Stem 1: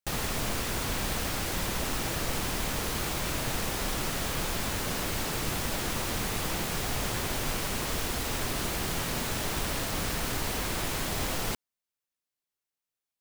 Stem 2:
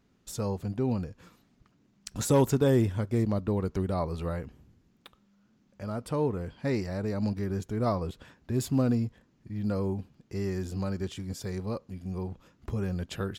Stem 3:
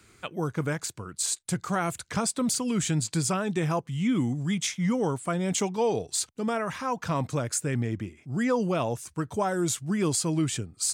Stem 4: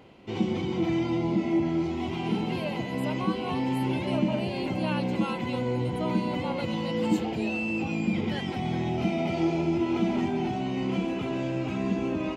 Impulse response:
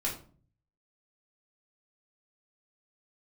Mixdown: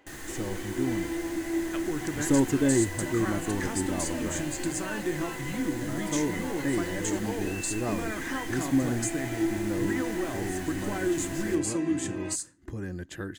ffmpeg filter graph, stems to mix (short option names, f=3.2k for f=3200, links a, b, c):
-filter_complex "[0:a]volume=-17.5dB,asplit=2[a][b];[b]volume=-5.5dB[c];[1:a]volume=-5.5dB[d];[2:a]acompressor=threshold=-30dB:ratio=6,adelay=1500,volume=-6dB,asplit=2[e][f];[f]volume=-12.5dB[g];[3:a]highpass=490,volume=-7.5dB[h];[4:a]atrim=start_sample=2205[i];[c][g]amix=inputs=2:normalize=0[j];[j][i]afir=irnorm=-1:irlink=0[k];[a][d][e][h][k]amix=inputs=5:normalize=0,superequalizer=6b=3.55:11b=2.82:15b=2:16b=1.58"